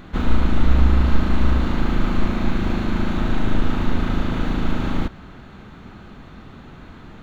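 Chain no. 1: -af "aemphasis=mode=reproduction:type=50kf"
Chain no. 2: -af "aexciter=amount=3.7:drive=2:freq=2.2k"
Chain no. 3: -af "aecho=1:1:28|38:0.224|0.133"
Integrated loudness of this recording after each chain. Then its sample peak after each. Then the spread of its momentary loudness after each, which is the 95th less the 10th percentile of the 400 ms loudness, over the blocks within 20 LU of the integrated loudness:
-23.0, -22.0, -22.5 LUFS; -2.5, -2.0, -1.5 dBFS; 23, 21, 22 LU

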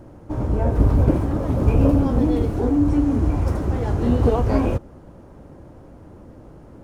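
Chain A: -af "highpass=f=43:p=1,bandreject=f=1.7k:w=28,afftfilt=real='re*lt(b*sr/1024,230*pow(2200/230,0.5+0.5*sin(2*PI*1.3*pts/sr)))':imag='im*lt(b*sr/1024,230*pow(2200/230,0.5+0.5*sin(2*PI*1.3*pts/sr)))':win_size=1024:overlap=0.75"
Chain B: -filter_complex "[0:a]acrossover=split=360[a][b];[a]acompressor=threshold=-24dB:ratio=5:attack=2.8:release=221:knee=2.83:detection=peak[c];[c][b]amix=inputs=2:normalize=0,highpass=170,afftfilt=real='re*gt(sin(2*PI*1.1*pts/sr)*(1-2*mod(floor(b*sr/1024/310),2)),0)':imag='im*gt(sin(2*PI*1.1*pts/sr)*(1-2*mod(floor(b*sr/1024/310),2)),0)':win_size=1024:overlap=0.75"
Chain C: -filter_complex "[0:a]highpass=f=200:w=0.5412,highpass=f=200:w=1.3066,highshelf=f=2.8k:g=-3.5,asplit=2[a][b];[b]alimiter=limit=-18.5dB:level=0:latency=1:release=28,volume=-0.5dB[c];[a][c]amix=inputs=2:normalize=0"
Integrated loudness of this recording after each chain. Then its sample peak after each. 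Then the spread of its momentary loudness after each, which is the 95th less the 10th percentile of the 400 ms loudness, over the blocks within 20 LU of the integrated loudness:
-21.5, -29.5, -19.5 LUFS; -5.5, -12.5, -5.0 dBFS; 7, 9, 7 LU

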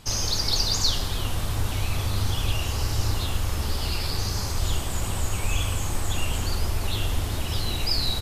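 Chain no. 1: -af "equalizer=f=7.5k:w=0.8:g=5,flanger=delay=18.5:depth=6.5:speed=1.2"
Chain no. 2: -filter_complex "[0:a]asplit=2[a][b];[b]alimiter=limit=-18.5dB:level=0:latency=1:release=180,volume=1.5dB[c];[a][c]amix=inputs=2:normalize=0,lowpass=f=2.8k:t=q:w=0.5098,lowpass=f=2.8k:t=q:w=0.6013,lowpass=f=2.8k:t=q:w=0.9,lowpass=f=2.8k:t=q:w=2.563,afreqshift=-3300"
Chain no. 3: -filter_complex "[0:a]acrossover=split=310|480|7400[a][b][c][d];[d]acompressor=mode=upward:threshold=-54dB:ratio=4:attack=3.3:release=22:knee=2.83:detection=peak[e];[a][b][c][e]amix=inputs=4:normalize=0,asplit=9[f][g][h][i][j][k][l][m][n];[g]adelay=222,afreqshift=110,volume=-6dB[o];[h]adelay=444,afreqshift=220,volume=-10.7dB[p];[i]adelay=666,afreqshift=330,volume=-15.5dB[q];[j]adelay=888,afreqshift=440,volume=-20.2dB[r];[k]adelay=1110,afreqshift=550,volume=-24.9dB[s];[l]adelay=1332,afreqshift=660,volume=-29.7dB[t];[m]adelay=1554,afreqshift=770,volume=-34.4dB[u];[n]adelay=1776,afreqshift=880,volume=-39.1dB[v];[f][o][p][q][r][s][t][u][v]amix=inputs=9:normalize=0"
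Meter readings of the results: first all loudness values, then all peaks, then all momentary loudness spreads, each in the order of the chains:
-28.0, -16.5, -24.5 LUFS; -10.0, -7.5, -8.0 dBFS; 7, 2, 4 LU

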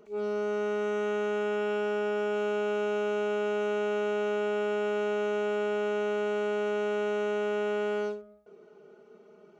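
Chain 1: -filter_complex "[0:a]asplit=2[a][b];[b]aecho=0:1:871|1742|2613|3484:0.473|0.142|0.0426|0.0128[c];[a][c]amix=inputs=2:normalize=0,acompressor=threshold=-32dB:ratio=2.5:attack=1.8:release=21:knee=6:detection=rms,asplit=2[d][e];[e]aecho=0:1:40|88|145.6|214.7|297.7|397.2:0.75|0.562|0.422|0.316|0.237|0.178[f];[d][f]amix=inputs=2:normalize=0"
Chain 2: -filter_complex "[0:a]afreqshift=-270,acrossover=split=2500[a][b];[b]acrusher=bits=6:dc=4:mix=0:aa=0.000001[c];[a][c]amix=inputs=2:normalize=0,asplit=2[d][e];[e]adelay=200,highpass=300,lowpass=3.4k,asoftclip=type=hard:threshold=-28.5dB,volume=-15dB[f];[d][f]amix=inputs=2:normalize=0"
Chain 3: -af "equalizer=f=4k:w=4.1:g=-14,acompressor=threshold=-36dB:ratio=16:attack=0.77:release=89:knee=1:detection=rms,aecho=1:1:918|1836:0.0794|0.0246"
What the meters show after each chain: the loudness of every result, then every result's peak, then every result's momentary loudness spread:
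-31.0, -30.5, -41.5 LUFS; -21.0, -20.5, -33.5 dBFS; 6, 1, 11 LU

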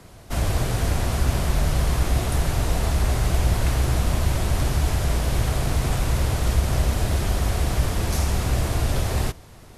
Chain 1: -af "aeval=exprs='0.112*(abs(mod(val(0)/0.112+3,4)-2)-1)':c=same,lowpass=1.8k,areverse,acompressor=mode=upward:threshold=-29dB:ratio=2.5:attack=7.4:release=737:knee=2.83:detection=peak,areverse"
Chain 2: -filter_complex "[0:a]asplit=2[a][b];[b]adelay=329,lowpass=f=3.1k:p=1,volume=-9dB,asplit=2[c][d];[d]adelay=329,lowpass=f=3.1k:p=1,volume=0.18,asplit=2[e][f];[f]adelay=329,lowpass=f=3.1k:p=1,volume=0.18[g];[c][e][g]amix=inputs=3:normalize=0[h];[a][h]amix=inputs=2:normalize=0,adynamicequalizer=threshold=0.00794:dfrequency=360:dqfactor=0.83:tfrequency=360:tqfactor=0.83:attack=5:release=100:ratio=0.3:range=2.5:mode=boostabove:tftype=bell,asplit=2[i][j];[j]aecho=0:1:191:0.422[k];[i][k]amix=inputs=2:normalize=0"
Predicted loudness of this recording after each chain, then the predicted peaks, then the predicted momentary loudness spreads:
-27.0, -21.5 LUFS; -16.0, -5.0 dBFS; 1, 2 LU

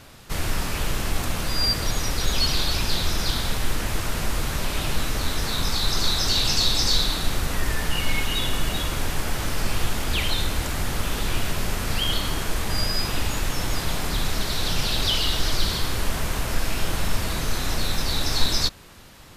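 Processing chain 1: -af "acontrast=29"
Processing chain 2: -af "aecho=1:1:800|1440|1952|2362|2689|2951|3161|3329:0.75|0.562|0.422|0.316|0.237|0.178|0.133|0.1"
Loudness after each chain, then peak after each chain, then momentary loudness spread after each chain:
-20.0, -21.5 LUFS; -3.0, -4.0 dBFS; 6, 4 LU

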